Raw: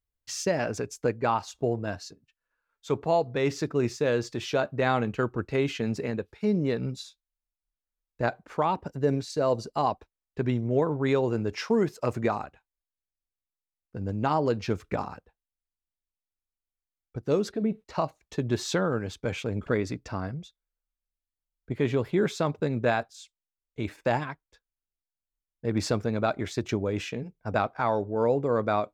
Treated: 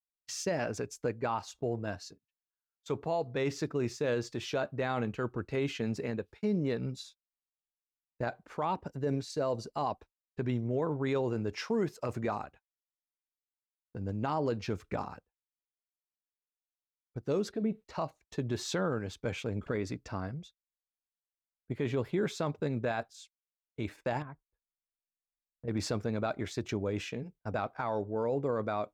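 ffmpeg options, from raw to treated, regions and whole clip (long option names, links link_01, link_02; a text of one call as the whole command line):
ffmpeg -i in.wav -filter_complex "[0:a]asettb=1/sr,asplit=3[link_01][link_02][link_03];[link_01]atrim=end=24.224[link_04];[link_02]atrim=start=24.22:end=25.68,asetpts=PTS-STARTPTS,afade=type=in:duration=0.004:curve=qsin,afade=type=out:start_time=1.456:duration=0.004:curve=qsin,lowpass=1300,lowshelf=frequency=160:gain=10,acompressor=threshold=-41dB:ratio=2:attack=3.2:release=140:knee=1:detection=peak[link_05];[link_03]atrim=start=25.676[link_06];[link_04][link_05]acrossfade=duration=0.004:curve1=hsin:curve2=qsin[link_07];[link_07][link_06]acrossfade=duration=0.004:curve1=qsin:curve2=hsin,agate=range=-21dB:threshold=-49dB:ratio=16:detection=peak,alimiter=limit=-18dB:level=0:latency=1:release=14,volume=-4.5dB" out.wav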